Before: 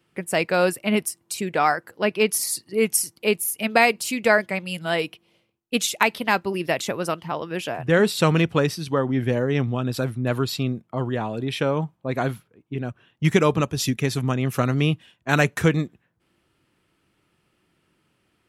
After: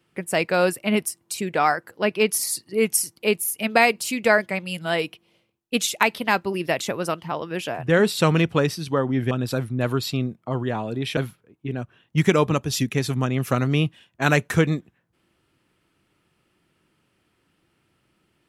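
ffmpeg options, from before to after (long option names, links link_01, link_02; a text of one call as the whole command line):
ffmpeg -i in.wav -filter_complex "[0:a]asplit=3[link_01][link_02][link_03];[link_01]atrim=end=9.312[link_04];[link_02]atrim=start=9.768:end=11.632[link_05];[link_03]atrim=start=12.238[link_06];[link_04][link_05]acrossfade=duration=0.004:curve1=hsin:curve2=hsin[link_07];[link_07][link_06]acrossfade=duration=0.004:curve1=hsin:curve2=hsin" out.wav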